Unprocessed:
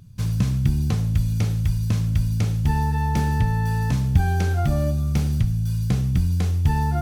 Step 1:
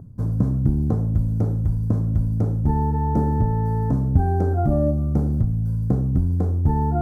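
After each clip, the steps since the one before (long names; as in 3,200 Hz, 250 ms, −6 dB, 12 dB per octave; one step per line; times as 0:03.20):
drawn EQ curve 180 Hz 0 dB, 260 Hz +9 dB, 650 Hz +5 dB, 1,400 Hz −6 dB, 2,600 Hz −29 dB, 10,000 Hz −16 dB
reversed playback
upward compression, threshold −21 dBFS
reversed playback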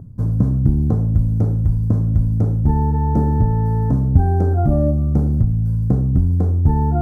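low-shelf EQ 200 Hz +4.5 dB
level +1 dB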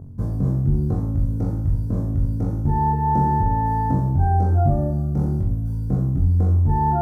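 brickwall limiter −11 dBFS, peak gain reduction 8.5 dB
flutter between parallel walls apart 3.7 metres, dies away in 0.54 s
level −3 dB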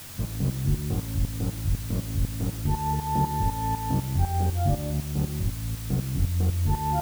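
shaped tremolo saw up 4 Hz, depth 75%
background noise white −39 dBFS
level −3.5 dB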